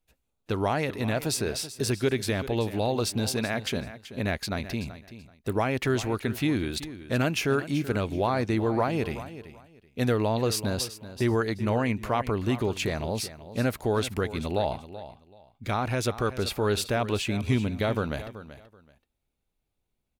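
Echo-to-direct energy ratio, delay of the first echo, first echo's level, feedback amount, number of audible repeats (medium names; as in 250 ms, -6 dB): -14.0 dB, 381 ms, -14.0 dB, 22%, 2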